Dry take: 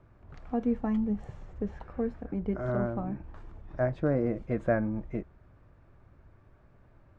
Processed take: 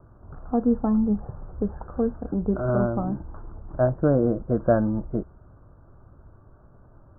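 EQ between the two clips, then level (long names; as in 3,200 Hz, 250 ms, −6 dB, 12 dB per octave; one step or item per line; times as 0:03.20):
Butterworth low-pass 1,500 Hz 72 dB per octave
+7.0 dB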